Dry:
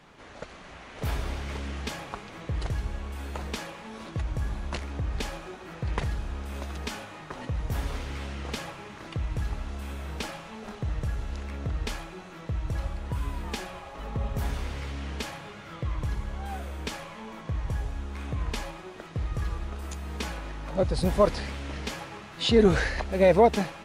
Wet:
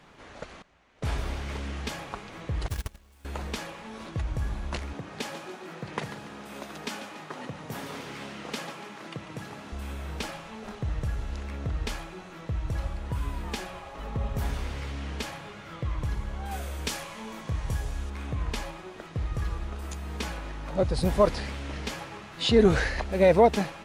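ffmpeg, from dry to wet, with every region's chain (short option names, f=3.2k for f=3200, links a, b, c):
-filter_complex "[0:a]asettb=1/sr,asplit=3[a][b][c];[a]atrim=end=0.624[d];[b]atrim=start=0.62:end=1.18,asetpts=PTS-STARTPTS,afade=t=in:d=0.004:c=qsin,afade=t=out:st=0.556:d=0.004:c=qsin,agate=range=-18dB:threshold=-39dB:ratio=16:release=100:detection=peak,lowpass=f=10k:w=0.5412,lowpass=f=10k:w=1.3066[e];[c]atrim=start=1.176[f];[d][e]acrossfade=d=0.004:c1=hsin:c2=qsin[g];[g][f]acrossfade=d=0.004:c1=qsin:c2=hsin,asettb=1/sr,asplit=3[h][i][j];[h]atrim=end=2.684[k];[i]atrim=start=2.68:end=3.25,asetpts=PTS-STARTPTS,afade=t=in:d=0.004:c=qsin,afade=t=out:st=0.566:d=0.004:c=qsin,agate=range=-22dB:threshold=-29dB:ratio=16:release=100:detection=peak,highshelf=f=4k:g=10.5,acrusher=bits=2:mode=log:mix=0:aa=0.000001[l];[j]atrim=start=3.246[m];[k][l]acrossfade=d=0.004:c1=hsin:c2=qsin[n];[n][m]acrossfade=d=0.004:c1=qsin:c2=hsin,asettb=1/sr,asplit=3[o][p][q];[o]atrim=end=4.934[r];[p]atrim=start=4.93:end=9.72,asetpts=PTS-STARTPTS,afade=t=in:d=0.004:c=qsin,afade=t=out:st=4.786:d=0.004:c=qsin,highpass=f=150:w=0.5412,highpass=f=150:w=1.3066,aecho=1:1:143|286|429|572|715:0.251|0.128|0.0653|0.0333|0.017,atrim=end_sample=211239[s];[q]atrim=start=9.716[t];[r][s]acrossfade=d=0.004:c1=hsin:c2=qsin[u];[u][t]acrossfade=d=0.004:c1=qsin:c2=hsin,asettb=1/sr,asplit=3[v][w][x];[v]atrim=end=16.514[y];[w]atrim=start=16.51:end=18.1,asetpts=PTS-STARTPTS,afade=t=in:d=0.004:c=qsin,afade=t=out:st=1.586:d=0.004:c=qsin,highshelf=f=4.4k:g=10.5,asplit=2[z][aa];[aa]adelay=27,volume=-11.5dB[ab];[z][ab]amix=inputs=2:normalize=0,atrim=end_sample=70119[ac];[x]atrim=start=18.096[ad];[y][ac]acrossfade=d=0.004:c1=hsin:c2=qsin[ae];[ae][ad]acrossfade=d=0.004:c1=qsin:c2=hsin"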